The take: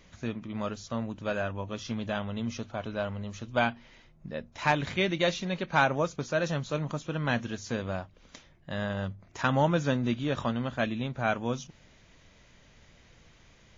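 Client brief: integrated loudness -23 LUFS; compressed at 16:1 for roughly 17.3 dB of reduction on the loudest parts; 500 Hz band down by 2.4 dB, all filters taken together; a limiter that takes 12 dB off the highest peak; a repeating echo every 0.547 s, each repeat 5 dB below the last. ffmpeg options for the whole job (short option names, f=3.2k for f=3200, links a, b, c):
-af "equalizer=f=500:t=o:g=-3,acompressor=threshold=-38dB:ratio=16,alimiter=level_in=12.5dB:limit=-24dB:level=0:latency=1,volume=-12.5dB,aecho=1:1:547|1094|1641|2188|2735|3282|3829:0.562|0.315|0.176|0.0988|0.0553|0.031|0.0173,volume=22.5dB"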